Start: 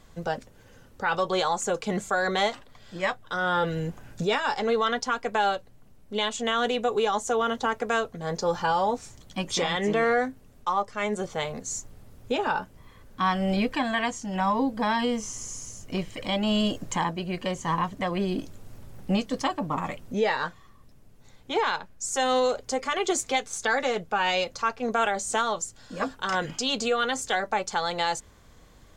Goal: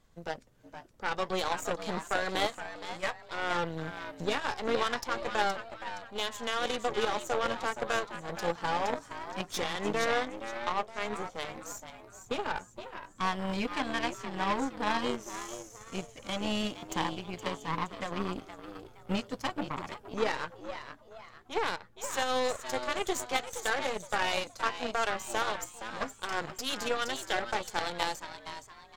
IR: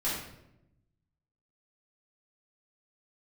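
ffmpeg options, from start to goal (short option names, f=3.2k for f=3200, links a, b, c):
-filter_complex "[0:a]asplit=6[a][b][c][d][e][f];[b]adelay=469,afreqshift=110,volume=-7dB[g];[c]adelay=938,afreqshift=220,volume=-14.1dB[h];[d]adelay=1407,afreqshift=330,volume=-21.3dB[i];[e]adelay=1876,afreqshift=440,volume=-28.4dB[j];[f]adelay=2345,afreqshift=550,volume=-35.5dB[k];[a][g][h][i][j][k]amix=inputs=6:normalize=0,aeval=exprs='0.282*(cos(1*acos(clip(val(0)/0.282,-1,1)))-cos(1*PI/2))+0.0631*(cos(3*acos(clip(val(0)/0.282,-1,1)))-cos(3*PI/2))+0.00398*(cos(7*acos(clip(val(0)/0.282,-1,1)))-cos(7*PI/2))+0.01*(cos(8*acos(clip(val(0)/0.282,-1,1)))-cos(8*PI/2))':c=same"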